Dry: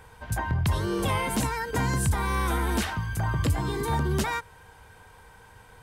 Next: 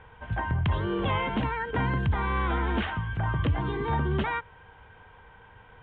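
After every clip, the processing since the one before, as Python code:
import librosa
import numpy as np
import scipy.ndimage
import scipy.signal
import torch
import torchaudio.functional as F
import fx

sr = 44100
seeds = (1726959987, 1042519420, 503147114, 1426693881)

y = scipy.signal.sosfilt(scipy.signal.ellip(4, 1.0, 40, 3300.0, 'lowpass', fs=sr, output='sos'), x)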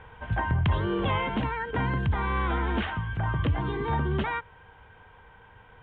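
y = fx.rider(x, sr, range_db=5, speed_s=2.0)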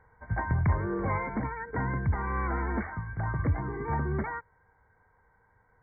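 y = fx.brickwall_lowpass(x, sr, high_hz=2300.0)
y = fx.upward_expand(y, sr, threshold_db=-46.0, expansion=1.5)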